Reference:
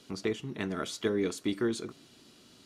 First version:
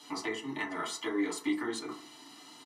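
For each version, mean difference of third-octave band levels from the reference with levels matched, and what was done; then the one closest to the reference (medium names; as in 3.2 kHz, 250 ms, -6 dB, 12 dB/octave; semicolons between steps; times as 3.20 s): 6.5 dB: high-pass 490 Hz 12 dB/octave; comb 1 ms, depth 70%; compression, threshold -40 dBFS, peak gain reduction 9 dB; FDN reverb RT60 0.41 s, low-frequency decay 1×, high-frequency decay 0.3×, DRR -6 dB; trim +1.5 dB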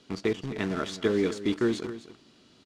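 4.0 dB: in parallel at -4 dB: word length cut 6-bit, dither none; on the sum: distance through air 77 m; delay 256 ms -13.5 dB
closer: second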